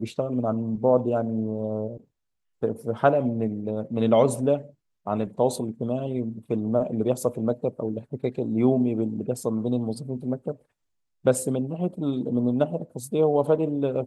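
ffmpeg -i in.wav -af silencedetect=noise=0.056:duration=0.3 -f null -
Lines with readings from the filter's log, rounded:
silence_start: 1.87
silence_end: 2.63 | silence_duration: 0.76
silence_start: 4.57
silence_end: 5.07 | silence_duration: 0.50
silence_start: 10.51
silence_end: 11.26 | silence_duration: 0.74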